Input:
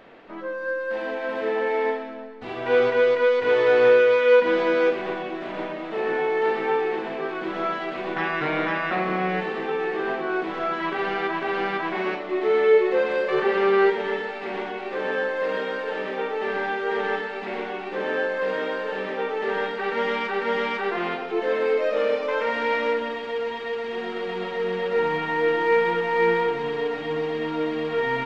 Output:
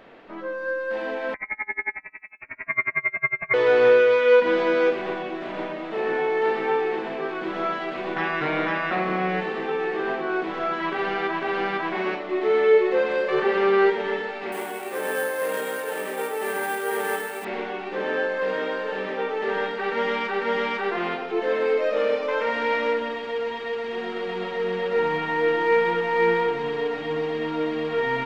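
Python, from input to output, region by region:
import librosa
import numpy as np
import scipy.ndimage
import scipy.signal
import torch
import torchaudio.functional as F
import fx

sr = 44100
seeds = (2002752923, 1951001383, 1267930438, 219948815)

y = fx.chain(x, sr, fx.freq_invert(carrier_hz=2600),
    fx.tremolo_db(hz=11.0, depth_db=32), at=(1.34, 3.54))
y = fx.chain(y, sr, fx.cvsd(bps=64000),
    fx.resample_bad(factor=4, down='none', up='hold'),
    fx.highpass(hz=220.0, slope=6), at=(14.52, 17.45))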